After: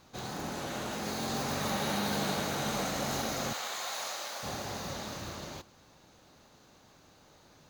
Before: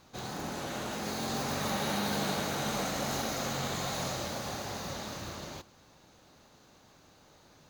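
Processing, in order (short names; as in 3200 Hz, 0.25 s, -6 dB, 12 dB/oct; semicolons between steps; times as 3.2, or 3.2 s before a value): 3.53–4.43 HPF 760 Hz 12 dB/oct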